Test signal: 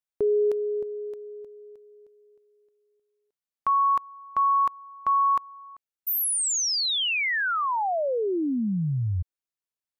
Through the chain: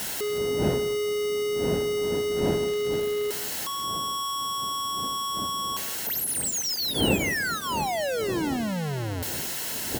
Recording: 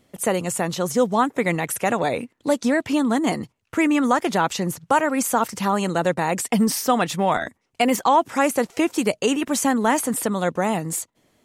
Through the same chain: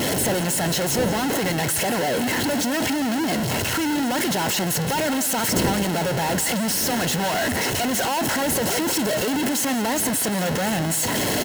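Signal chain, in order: infinite clipping; wind noise 330 Hz -33 dBFS; notch comb 1200 Hz; on a send: echo 0.173 s -14 dB

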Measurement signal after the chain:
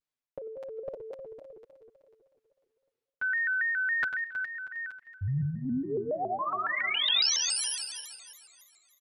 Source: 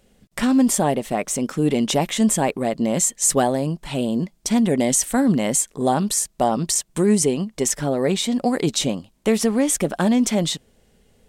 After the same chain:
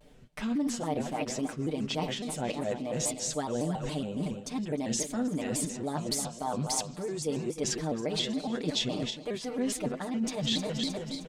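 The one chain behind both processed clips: regenerating reverse delay 0.157 s, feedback 65%, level -10.5 dB; high shelf 6500 Hz -12 dB; reverse; compressor 16:1, threshold -31 dBFS; reverse; comb 7.3 ms, depth 81%; dynamic EQ 4200 Hz, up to +8 dB, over -52 dBFS, Q 1.4; on a send: narrowing echo 0.143 s, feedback 61%, band-pass 2600 Hz, level -23 dB; on the sum: shaped vibrato square 3.6 Hz, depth 160 cents

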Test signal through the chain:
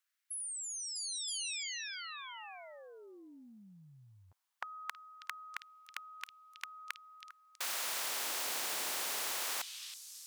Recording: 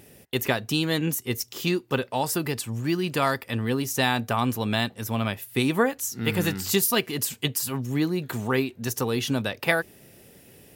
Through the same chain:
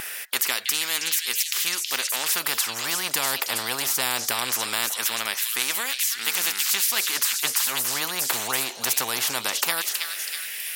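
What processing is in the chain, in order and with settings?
LFO high-pass sine 0.2 Hz 790–2500 Hz; delay with a stepping band-pass 0.323 s, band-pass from 4000 Hz, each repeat 0.7 oct, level -7 dB; spectral compressor 4:1

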